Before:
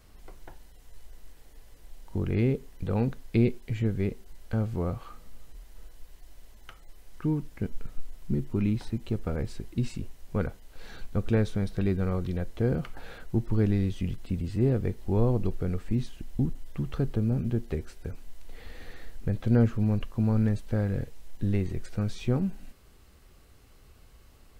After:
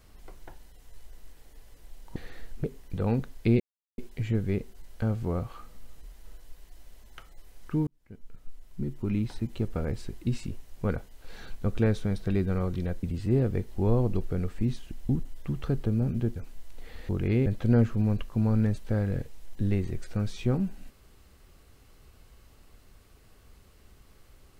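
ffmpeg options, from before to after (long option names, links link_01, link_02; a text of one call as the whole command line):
ffmpeg -i in.wav -filter_complex "[0:a]asplit=9[link_01][link_02][link_03][link_04][link_05][link_06][link_07][link_08][link_09];[link_01]atrim=end=2.162[link_10];[link_02]atrim=start=18.798:end=19.282[link_11];[link_03]atrim=start=2.528:end=3.49,asetpts=PTS-STARTPTS,afade=type=out:start_time=0.958:duration=0.004:curve=hsin,apad=pad_dur=0.38[link_12];[link_04]atrim=start=3.49:end=7.38,asetpts=PTS-STARTPTS,afade=type=in:duration=0.004:curve=hsin,afade=type=out:start_time=3.886:duration=0.004:curve=hsin[link_13];[link_05]atrim=start=7.38:end=12.542,asetpts=PTS-STARTPTS,afade=type=in:duration=1.59[link_14];[link_06]atrim=start=14.328:end=17.662[link_15];[link_07]atrim=start=18.068:end=18.802[link_16];[link_08]atrim=start=2.158:end=2.532[link_17];[link_09]atrim=start=19.278[link_18];[link_10][link_11]acrossfade=duration=0.004:curve1=hsin:curve2=hsin[link_19];[link_12][link_13][link_14]concat=n=3:v=0:a=1[link_20];[link_19][link_20]acrossfade=duration=0.004:curve1=hsin:curve2=hsin[link_21];[link_21][link_15]acrossfade=duration=0.004:curve1=hsin:curve2=hsin[link_22];[link_22][link_16]acrossfade=duration=0.004:curve1=hsin:curve2=hsin[link_23];[link_23][link_17]acrossfade=duration=0.004:curve1=hsin:curve2=hsin[link_24];[link_24][link_18]acrossfade=duration=0.004:curve1=hsin:curve2=hsin" out.wav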